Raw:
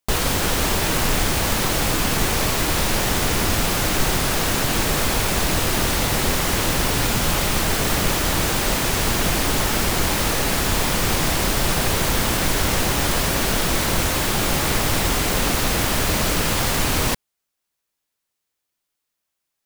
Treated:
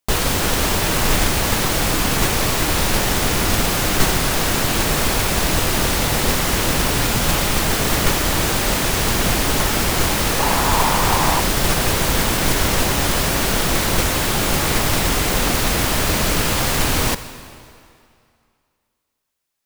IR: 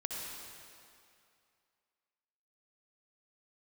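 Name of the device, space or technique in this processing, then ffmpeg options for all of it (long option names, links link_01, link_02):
keyed gated reverb: -filter_complex "[0:a]asplit=3[link_01][link_02][link_03];[1:a]atrim=start_sample=2205[link_04];[link_02][link_04]afir=irnorm=-1:irlink=0[link_05];[link_03]apad=whole_len=866750[link_06];[link_05][link_06]sidechaingate=range=-10dB:threshold=-17dB:ratio=16:detection=peak,volume=-1dB[link_07];[link_01][link_07]amix=inputs=2:normalize=0,asettb=1/sr,asplit=3[link_08][link_09][link_10];[link_08]atrim=end=10.394[link_11];[link_09]atrim=start=10.39:end=11.4,asetpts=PTS-STARTPTS,afade=type=in:duration=0.004:curve=qsin,afade=type=out:start_time=1.006:duration=0.004:curve=qsin,equalizer=frequency=940:width=2.2:gain=10.5[link_12];[link_10]atrim=start=11.396[link_13];[link_11][link_12]acrossfade=duration=0.004:curve1=hsin:curve2=qsin[link_14];[link_14][link_13]acrossfade=duration=0.004:curve1=qsin:curve2=hsin"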